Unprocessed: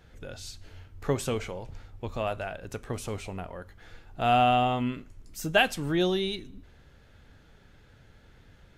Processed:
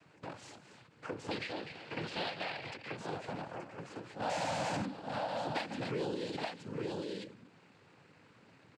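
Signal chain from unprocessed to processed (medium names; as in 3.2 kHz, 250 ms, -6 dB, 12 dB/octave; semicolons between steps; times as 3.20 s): median filter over 9 samples; high-pass 140 Hz; on a send: multi-tap echo 142/253/816/875 ms -18/-13/-16/-6 dB; 4.29–4.85 s: on the sum: Schmitt trigger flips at -36.5 dBFS; noise-vocoded speech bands 8; 1.31–2.97 s: high-order bell 3 kHz +12 dB; in parallel at -8 dB: saturation -24.5 dBFS, distortion -10 dB; on the sum: compression 2.5:1, threshold -34 dBFS, peak gain reduction 12 dB; endings held to a fixed fall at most 130 dB/s; trim -3.5 dB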